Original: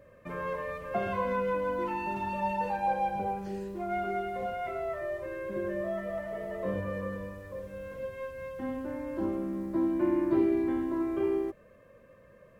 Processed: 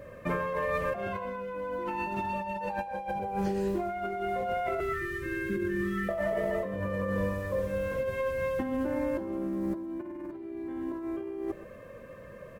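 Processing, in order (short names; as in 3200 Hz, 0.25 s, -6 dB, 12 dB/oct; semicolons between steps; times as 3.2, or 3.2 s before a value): 4.8–6.09 elliptic band-stop 400–1300 Hz, stop band 50 dB; negative-ratio compressor -38 dBFS, ratio -1; on a send: echo 0.124 s -16 dB; on the sum: gain +5 dB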